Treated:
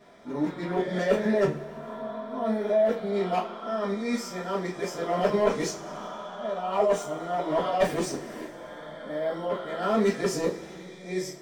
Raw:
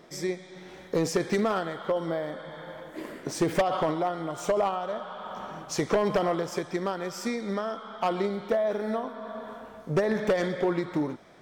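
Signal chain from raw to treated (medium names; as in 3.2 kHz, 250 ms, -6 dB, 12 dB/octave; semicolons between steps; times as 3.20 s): reverse the whole clip; two-slope reverb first 0.27 s, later 2.5 s, from -22 dB, DRR -7.5 dB; trim -8 dB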